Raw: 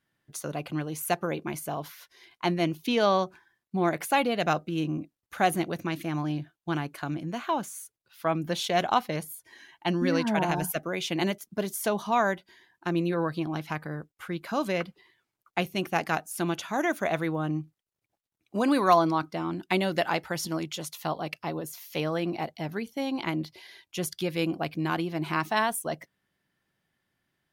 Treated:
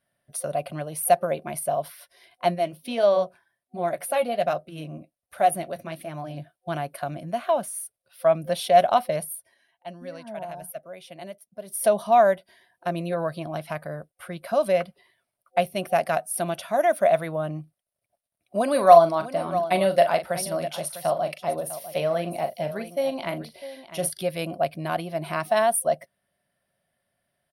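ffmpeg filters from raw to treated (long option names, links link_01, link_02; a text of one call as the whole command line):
ffmpeg -i in.wav -filter_complex "[0:a]asplit=3[link_01][link_02][link_03];[link_01]afade=type=out:start_time=2.54:duration=0.02[link_04];[link_02]flanger=delay=2:depth=7.1:regen=-56:speed=1.3:shape=sinusoidal,afade=type=in:start_time=2.54:duration=0.02,afade=type=out:start_time=6.36:duration=0.02[link_05];[link_03]afade=type=in:start_time=6.36:duration=0.02[link_06];[link_04][link_05][link_06]amix=inputs=3:normalize=0,asplit=3[link_07][link_08][link_09];[link_07]afade=type=out:start_time=18.71:duration=0.02[link_10];[link_08]aecho=1:1:41|651:0.316|0.211,afade=type=in:start_time=18.71:duration=0.02,afade=type=out:start_time=24.18:duration=0.02[link_11];[link_09]afade=type=in:start_time=24.18:duration=0.02[link_12];[link_10][link_11][link_12]amix=inputs=3:normalize=0,asplit=3[link_13][link_14][link_15];[link_13]atrim=end=9.55,asetpts=PTS-STARTPTS,afade=type=out:start_time=9.32:duration=0.23:silence=0.199526[link_16];[link_14]atrim=start=9.55:end=11.64,asetpts=PTS-STARTPTS,volume=-14dB[link_17];[link_15]atrim=start=11.64,asetpts=PTS-STARTPTS,afade=type=in:duration=0.23:silence=0.199526[link_18];[link_16][link_17][link_18]concat=n=3:v=0:a=1,superequalizer=6b=0.501:8b=3.98:15b=0.398:16b=3.16,volume=-1dB" out.wav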